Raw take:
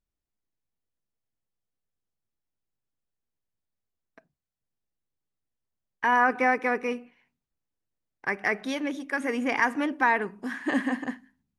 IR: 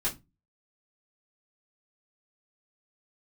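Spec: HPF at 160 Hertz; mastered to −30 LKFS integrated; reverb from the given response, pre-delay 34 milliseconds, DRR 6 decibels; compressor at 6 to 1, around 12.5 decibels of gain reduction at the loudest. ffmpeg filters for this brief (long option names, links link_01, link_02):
-filter_complex "[0:a]highpass=160,acompressor=threshold=-31dB:ratio=6,asplit=2[link_01][link_02];[1:a]atrim=start_sample=2205,adelay=34[link_03];[link_02][link_03]afir=irnorm=-1:irlink=0,volume=-12dB[link_04];[link_01][link_04]amix=inputs=2:normalize=0,volume=4.5dB"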